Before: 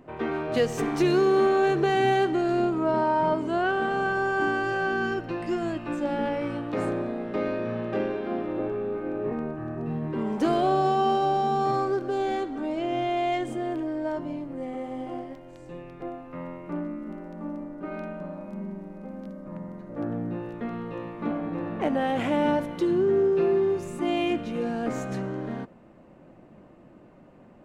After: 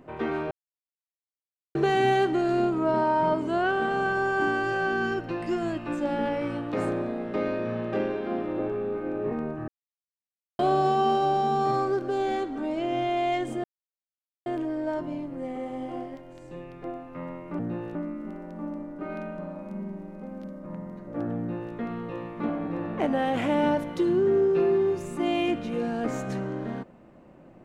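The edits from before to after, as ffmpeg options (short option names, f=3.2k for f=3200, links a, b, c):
-filter_complex "[0:a]asplit=8[a][b][c][d][e][f][g][h];[a]atrim=end=0.51,asetpts=PTS-STARTPTS,afade=t=out:st=0.506:d=0.004:c=hsin[i];[b]atrim=start=0.51:end=1.75,asetpts=PTS-STARTPTS,volume=0[j];[c]atrim=start=1.75:end=9.68,asetpts=PTS-STARTPTS,afade=t=in:d=0.004:c=hsin,afade=t=out:st=7.926:d=0.004:c=hsin[k];[d]atrim=start=9.68:end=10.59,asetpts=PTS-STARTPTS,volume=0[l];[e]atrim=start=10.59:end=13.64,asetpts=PTS-STARTPTS,afade=t=in:d=0.004:c=hsin,afade=t=out:st=3.046:d=0.004:c=hsin,apad=pad_dur=0.82[m];[f]atrim=start=13.64:end=16.772,asetpts=PTS-STARTPTS,afade=t=in:d=0.004:c=hsin[n];[g]atrim=start=20.198:end=20.562[o];[h]atrim=start=16.768[p];[i][j][k][l][m][n]concat=n=6:v=0:a=1[q];[q][o]acrossfade=d=0.004:c1=hsin:c2=hsin[r];[r][p]acrossfade=d=0.004:c1=hsin:c2=hsin"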